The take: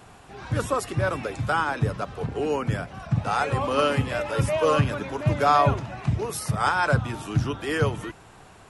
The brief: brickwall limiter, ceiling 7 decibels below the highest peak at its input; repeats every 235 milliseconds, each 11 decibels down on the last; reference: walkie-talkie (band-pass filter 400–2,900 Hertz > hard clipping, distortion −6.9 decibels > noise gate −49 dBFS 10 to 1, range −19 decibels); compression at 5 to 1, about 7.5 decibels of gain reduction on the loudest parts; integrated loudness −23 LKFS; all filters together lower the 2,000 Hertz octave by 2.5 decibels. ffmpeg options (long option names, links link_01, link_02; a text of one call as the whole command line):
ffmpeg -i in.wav -af "equalizer=frequency=2000:width_type=o:gain=-3,acompressor=threshold=-24dB:ratio=5,alimiter=limit=-21.5dB:level=0:latency=1,highpass=400,lowpass=2900,aecho=1:1:235|470|705:0.282|0.0789|0.0221,asoftclip=type=hard:threshold=-35dB,agate=range=-19dB:threshold=-49dB:ratio=10,volume=15.5dB" out.wav